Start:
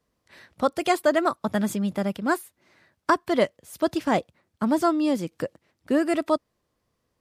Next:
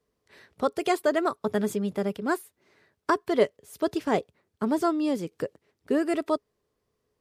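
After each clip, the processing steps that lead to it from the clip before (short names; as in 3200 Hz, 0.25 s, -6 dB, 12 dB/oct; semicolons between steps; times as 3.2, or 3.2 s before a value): bell 420 Hz +14 dB 0.2 oct; gain -4 dB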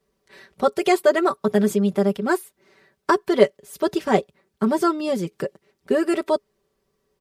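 comb 5.2 ms, depth 77%; gain +4 dB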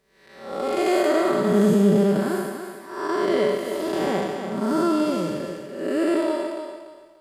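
time blur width 0.286 s; thinning echo 0.29 s, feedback 30%, high-pass 240 Hz, level -7 dB; gain +5 dB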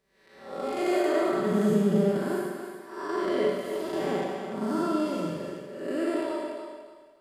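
reverb RT60 0.65 s, pre-delay 42 ms, DRR 3 dB; gain -7.5 dB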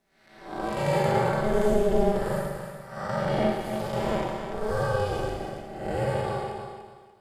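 ring modulator 210 Hz; notches 50/100/150/200 Hz; gain +4.5 dB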